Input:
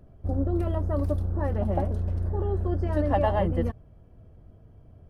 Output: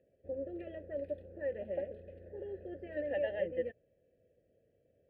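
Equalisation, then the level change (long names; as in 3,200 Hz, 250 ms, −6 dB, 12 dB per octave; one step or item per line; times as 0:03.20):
dynamic equaliser 1,900 Hz, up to +4 dB, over −43 dBFS, Q 0.9
formant filter e
phaser with its sweep stopped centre 2,600 Hz, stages 4
+2.5 dB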